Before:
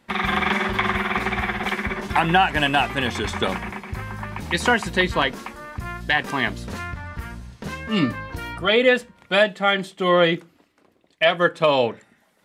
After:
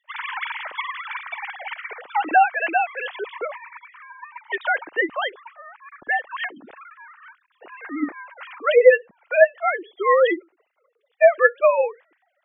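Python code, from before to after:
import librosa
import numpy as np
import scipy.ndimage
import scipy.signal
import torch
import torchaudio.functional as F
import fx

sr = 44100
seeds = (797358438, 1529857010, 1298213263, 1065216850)

y = fx.sine_speech(x, sr)
y = fx.spec_gate(y, sr, threshold_db=-25, keep='strong')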